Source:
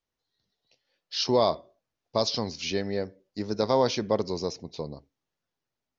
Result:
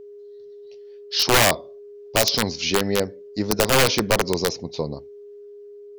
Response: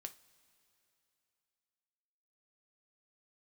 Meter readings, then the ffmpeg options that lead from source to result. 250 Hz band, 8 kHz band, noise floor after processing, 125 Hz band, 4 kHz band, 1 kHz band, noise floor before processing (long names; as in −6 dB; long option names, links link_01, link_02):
+5.0 dB, can't be measured, −42 dBFS, +8.0 dB, +10.0 dB, +6.0 dB, below −85 dBFS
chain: -af "aeval=exprs='(mod(7.5*val(0)+1,2)-1)/7.5':channel_layout=same,aeval=exprs='val(0)+0.00447*sin(2*PI*410*n/s)':channel_layout=same,volume=8dB"